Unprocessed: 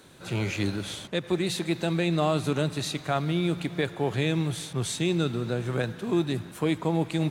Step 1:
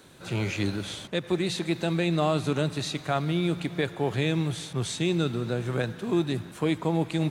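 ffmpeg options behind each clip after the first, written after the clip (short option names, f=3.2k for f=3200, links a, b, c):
-filter_complex "[0:a]acrossover=split=8900[a][b];[b]acompressor=threshold=-55dB:ratio=4:attack=1:release=60[c];[a][c]amix=inputs=2:normalize=0"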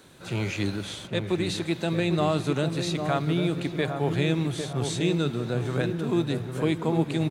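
-filter_complex "[0:a]asplit=2[a][b];[b]adelay=801,lowpass=f=920:p=1,volume=-5dB,asplit=2[c][d];[d]adelay=801,lowpass=f=920:p=1,volume=0.53,asplit=2[e][f];[f]adelay=801,lowpass=f=920:p=1,volume=0.53,asplit=2[g][h];[h]adelay=801,lowpass=f=920:p=1,volume=0.53,asplit=2[i][j];[j]adelay=801,lowpass=f=920:p=1,volume=0.53,asplit=2[k][l];[l]adelay=801,lowpass=f=920:p=1,volume=0.53,asplit=2[m][n];[n]adelay=801,lowpass=f=920:p=1,volume=0.53[o];[a][c][e][g][i][k][m][o]amix=inputs=8:normalize=0"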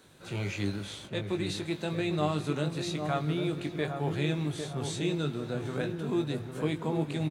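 -filter_complex "[0:a]asplit=2[a][b];[b]adelay=20,volume=-7dB[c];[a][c]amix=inputs=2:normalize=0,volume=-6dB"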